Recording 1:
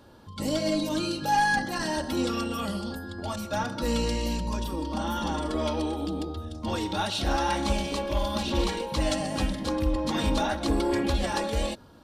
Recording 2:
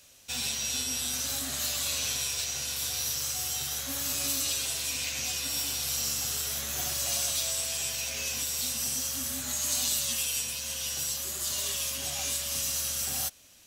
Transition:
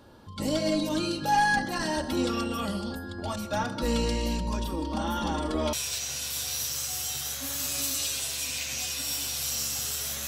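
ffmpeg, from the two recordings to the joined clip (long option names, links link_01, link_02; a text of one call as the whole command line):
ffmpeg -i cue0.wav -i cue1.wav -filter_complex "[0:a]apad=whole_dur=10.27,atrim=end=10.27,atrim=end=5.732[link_01];[1:a]atrim=start=2.188:end=6.73[link_02];[link_01][link_02]acrossfade=duration=0.004:curve1=hsin:curve2=hsin" out.wav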